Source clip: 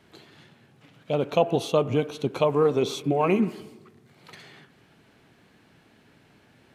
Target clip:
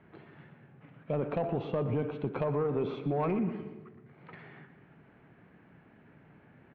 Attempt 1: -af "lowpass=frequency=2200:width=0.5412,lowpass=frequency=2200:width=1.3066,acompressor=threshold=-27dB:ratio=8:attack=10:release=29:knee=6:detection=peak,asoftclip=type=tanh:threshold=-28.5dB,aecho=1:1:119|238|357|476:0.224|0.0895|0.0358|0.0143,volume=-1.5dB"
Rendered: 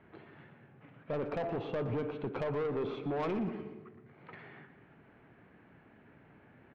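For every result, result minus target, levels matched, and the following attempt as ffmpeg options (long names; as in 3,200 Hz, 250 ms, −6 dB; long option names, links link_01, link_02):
soft clipping: distortion +10 dB; 125 Hz band −2.5 dB
-af "lowpass=frequency=2200:width=0.5412,lowpass=frequency=2200:width=1.3066,acompressor=threshold=-27dB:ratio=8:attack=10:release=29:knee=6:detection=peak,asoftclip=type=tanh:threshold=-19dB,aecho=1:1:119|238|357|476:0.224|0.0895|0.0358|0.0143,volume=-1.5dB"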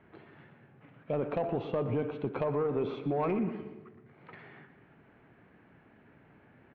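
125 Hz band −2.5 dB
-af "lowpass=frequency=2200:width=0.5412,lowpass=frequency=2200:width=1.3066,equalizer=frequency=160:width=2.1:gain=5,acompressor=threshold=-27dB:ratio=8:attack=10:release=29:knee=6:detection=peak,asoftclip=type=tanh:threshold=-19dB,aecho=1:1:119|238|357|476:0.224|0.0895|0.0358|0.0143,volume=-1.5dB"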